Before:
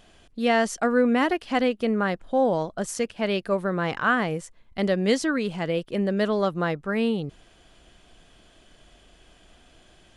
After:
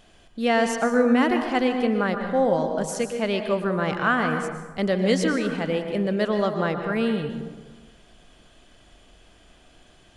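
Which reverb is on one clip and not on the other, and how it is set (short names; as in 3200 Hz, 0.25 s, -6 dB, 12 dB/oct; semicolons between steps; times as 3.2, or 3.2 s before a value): plate-style reverb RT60 1.3 s, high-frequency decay 0.5×, pre-delay 0.105 s, DRR 5.5 dB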